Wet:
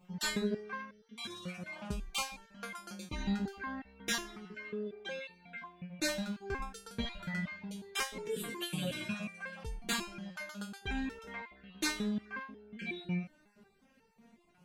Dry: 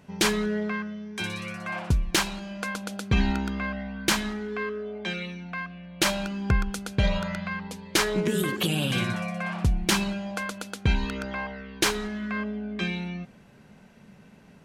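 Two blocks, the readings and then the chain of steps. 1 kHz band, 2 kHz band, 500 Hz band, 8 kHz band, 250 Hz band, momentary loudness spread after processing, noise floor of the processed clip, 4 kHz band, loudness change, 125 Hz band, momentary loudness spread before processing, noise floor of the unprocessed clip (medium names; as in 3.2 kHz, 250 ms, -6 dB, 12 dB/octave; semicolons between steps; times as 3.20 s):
-11.0 dB, -10.0 dB, -11.0 dB, -10.0 dB, -10.0 dB, 10 LU, -68 dBFS, -10.5 dB, -11.0 dB, -14.5 dB, 9 LU, -53 dBFS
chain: random holes in the spectrogram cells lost 20%; resonator arpeggio 5.5 Hz 180–450 Hz; trim +4.5 dB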